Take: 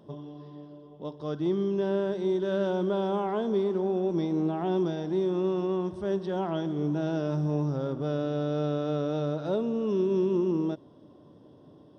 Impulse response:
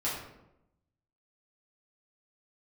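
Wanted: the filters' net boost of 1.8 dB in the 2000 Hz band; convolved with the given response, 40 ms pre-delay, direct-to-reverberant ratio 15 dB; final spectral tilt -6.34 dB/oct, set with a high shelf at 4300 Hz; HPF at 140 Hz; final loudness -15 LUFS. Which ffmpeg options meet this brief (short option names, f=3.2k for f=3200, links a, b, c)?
-filter_complex "[0:a]highpass=140,equalizer=f=2k:t=o:g=3.5,highshelf=f=4.3k:g=-4.5,asplit=2[a][b];[1:a]atrim=start_sample=2205,adelay=40[c];[b][c]afir=irnorm=-1:irlink=0,volume=-21.5dB[d];[a][d]amix=inputs=2:normalize=0,volume=14dB"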